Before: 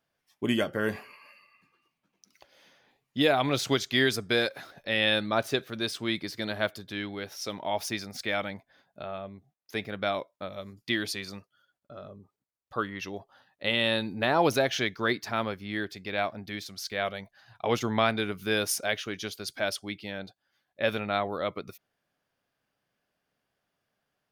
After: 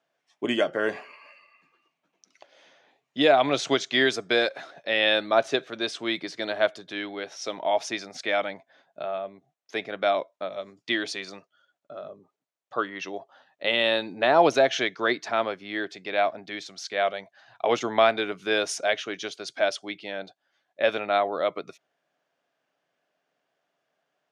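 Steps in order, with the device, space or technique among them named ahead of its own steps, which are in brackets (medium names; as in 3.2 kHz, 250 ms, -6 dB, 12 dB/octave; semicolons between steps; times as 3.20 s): television speaker (cabinet simulation 170–7300 Hz, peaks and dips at 210 Hz -10 dB, 660 Hz +6 dB, 4.8 kHz -5 dB); trim +3 dB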